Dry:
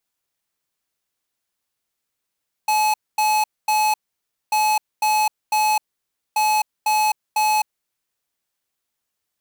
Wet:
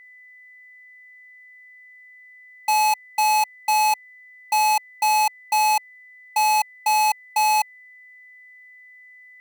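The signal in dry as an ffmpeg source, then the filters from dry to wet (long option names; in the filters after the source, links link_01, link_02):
-f lavfi -i "aevalsrc='0.126*(2*lt(mod(855*t,1),0.5)-1)*clip(min(mod(mod(t,1.84),0.5),0.26-mod(mod(t,1.84),0.5))/0.005,0,1)*lt(mod(t,1.84),1.5)':duration=5.52:sample_rate=44100"
-af "aeval=exprs='val(0)+0.00562*sin(2*PI*2000*n/s)':channel_layout=same"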